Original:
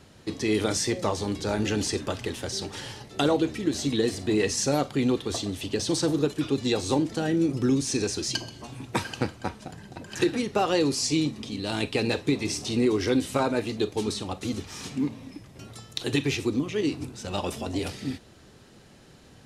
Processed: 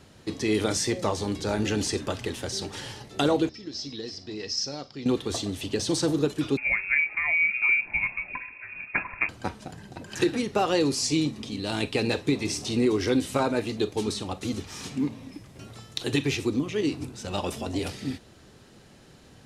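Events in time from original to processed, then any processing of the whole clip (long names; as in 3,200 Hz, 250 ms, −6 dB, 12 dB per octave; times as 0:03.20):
0:03.49–0:05.06: transistor ladder low-pass 5,400 Hz, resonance 85%
0:06.57–0:09.29: voice inversion scrambler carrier 2,600 Hz
0:15.33–0:15.96: linear delta modulator 64 kbit/s, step −54.5 dBFS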